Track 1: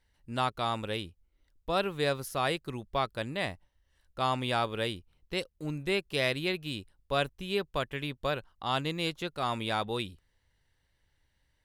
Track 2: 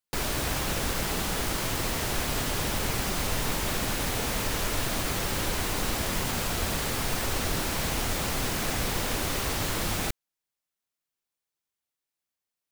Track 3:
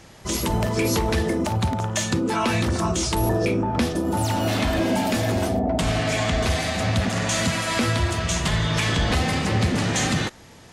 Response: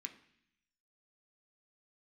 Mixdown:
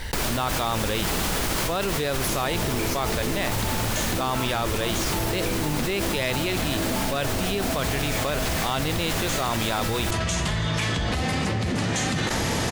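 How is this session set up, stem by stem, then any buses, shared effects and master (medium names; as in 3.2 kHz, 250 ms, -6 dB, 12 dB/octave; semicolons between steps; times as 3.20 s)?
0.0 dB, 0.00 s, no send, none
-8.0 dB, 0.00 s, no send, none
-15.5 dB, 2.00 s, no send, none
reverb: none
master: level flattener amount 100%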